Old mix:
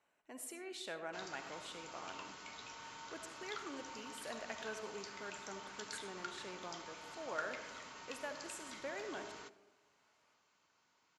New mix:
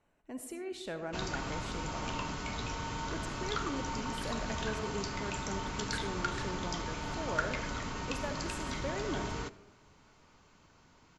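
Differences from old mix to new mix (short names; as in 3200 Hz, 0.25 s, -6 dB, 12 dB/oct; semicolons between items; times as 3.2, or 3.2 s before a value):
background +9.0 dB; master: remove HPF 930 Hz 6 dB/oct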